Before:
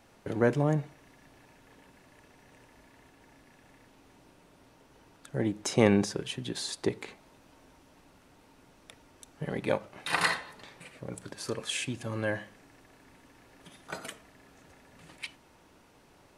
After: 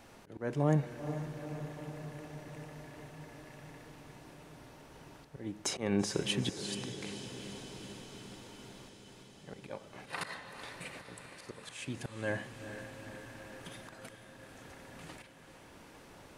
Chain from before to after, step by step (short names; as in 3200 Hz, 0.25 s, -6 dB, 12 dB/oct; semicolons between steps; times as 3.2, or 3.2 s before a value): auto swell 0.571 s; diffused feedback echo 0.451 s, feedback 72%, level -9.5 dB; gain +4 dB